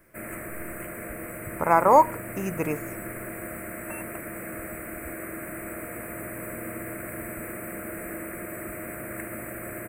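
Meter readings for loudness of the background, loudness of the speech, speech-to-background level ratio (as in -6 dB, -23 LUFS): -36.0 LUFS, -22.5 LUFS, 13.5 dB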